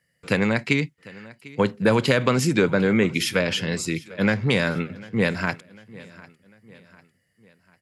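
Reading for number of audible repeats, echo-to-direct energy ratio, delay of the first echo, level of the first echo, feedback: 3, -20.0 dB, 748 ms, -21.0 dB, 47%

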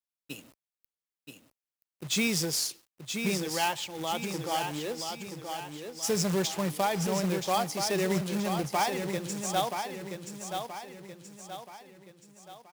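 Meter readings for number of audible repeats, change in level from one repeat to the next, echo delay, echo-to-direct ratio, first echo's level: 5, -7.0 dB, 977 ms, -5.5 dB, -6.5 dB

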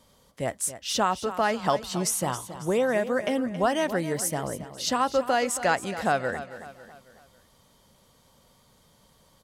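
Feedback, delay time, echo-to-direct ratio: 45%, 274 ms, -12.0 dB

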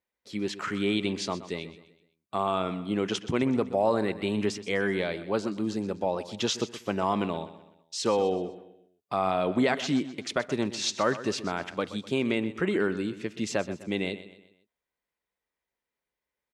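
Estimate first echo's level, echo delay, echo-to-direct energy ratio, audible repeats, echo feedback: -14.5 dB, 126 ms, -13.5 dB, 3, 43%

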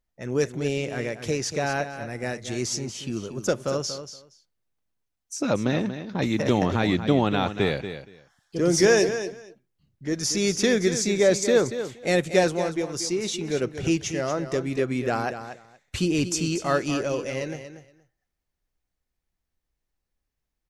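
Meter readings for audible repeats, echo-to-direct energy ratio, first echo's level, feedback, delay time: 2, -10.5 dB, -10.5 dB, 16%, 235 ms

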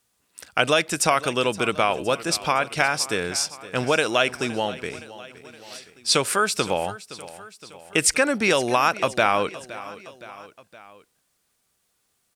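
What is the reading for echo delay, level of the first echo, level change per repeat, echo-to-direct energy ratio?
517 ms, -17.0 dB, -4.5 dB, -15.5 dB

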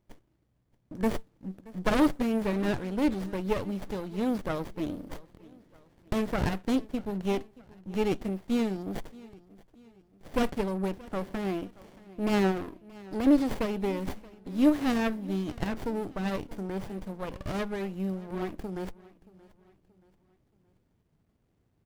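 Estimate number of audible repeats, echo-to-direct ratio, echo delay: 2, -20.5 dB, 627 ms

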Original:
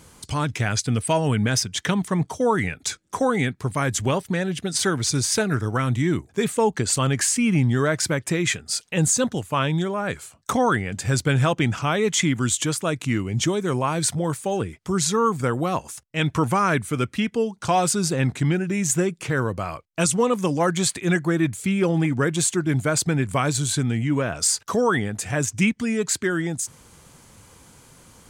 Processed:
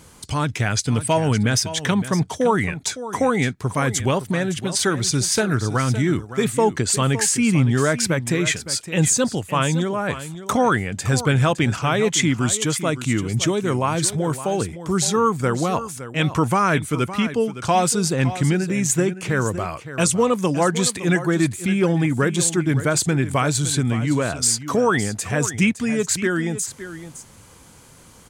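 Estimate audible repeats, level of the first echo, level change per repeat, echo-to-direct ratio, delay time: 1, -13.0 dB, no regular repeats, -13.0 dB, 563 ms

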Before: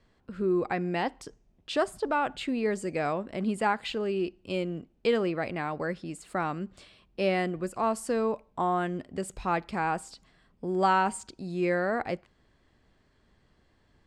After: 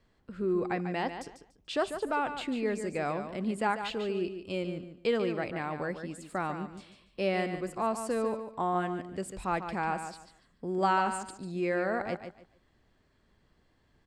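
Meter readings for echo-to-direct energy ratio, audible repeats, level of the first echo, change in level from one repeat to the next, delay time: -9.0 dB, 3, -9.0 dB, -13.0 dB, 145 ms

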